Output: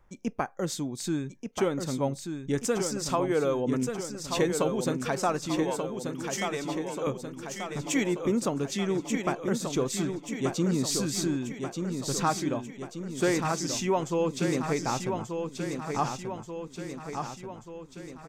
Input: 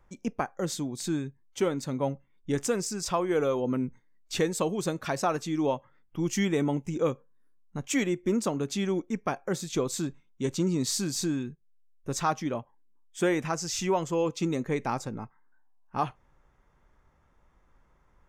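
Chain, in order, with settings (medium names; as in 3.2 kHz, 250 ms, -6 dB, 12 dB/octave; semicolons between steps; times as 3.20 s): 5.63–7.07 s: high-pass 900 Hz 6 dB/octave; feedback delay 1184 ms, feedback 57%, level -6 dB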